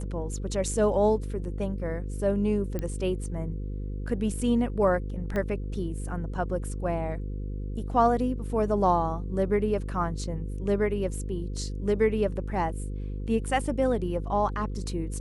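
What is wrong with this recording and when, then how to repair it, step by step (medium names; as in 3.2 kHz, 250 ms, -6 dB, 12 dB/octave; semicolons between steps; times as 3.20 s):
buzz 50 Hz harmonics 10 -33 dBFS
2.79 s: pop -19 dBFS
5.36 s: pop -19 dBFS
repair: de-click; de-hum 50 Hz, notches 10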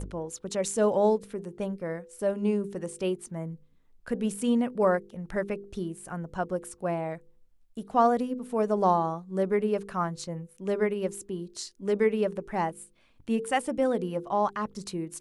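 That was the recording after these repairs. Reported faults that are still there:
5.36 s: pop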